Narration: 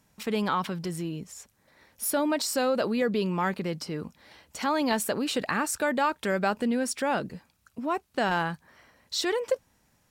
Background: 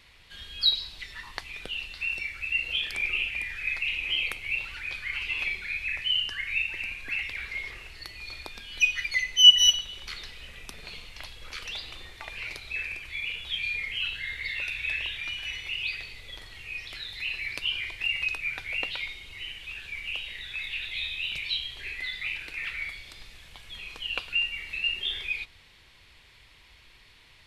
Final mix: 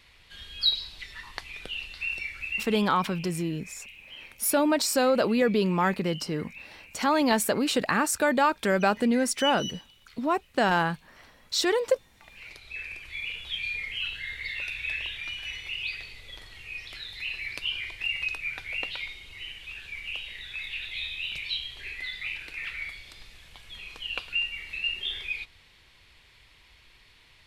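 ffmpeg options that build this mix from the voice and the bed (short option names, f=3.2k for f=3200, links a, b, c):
-filter_complex "[0:a]adelay=2400,volume=3dB[a];[1:a]volume=15dB,afade=t=out:st=2.39:d=0.54:silence=0.149624,afade=t=in:st=12.1:d=1.1:silence=0.158489[b];[a][b]amix=inputs=2:normalize=0"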